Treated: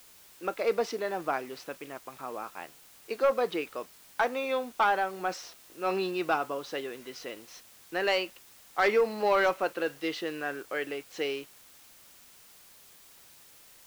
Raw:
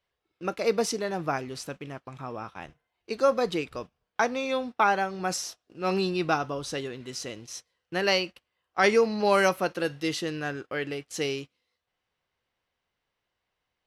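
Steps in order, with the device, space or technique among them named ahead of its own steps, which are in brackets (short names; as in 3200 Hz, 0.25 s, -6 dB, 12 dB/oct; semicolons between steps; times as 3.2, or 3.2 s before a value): tape answering machine (BPF 340–3200 Hz; soft clip -16 dBFS, distortion -16 dB; wow and flutter 16 cents; white noise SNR 23 dB)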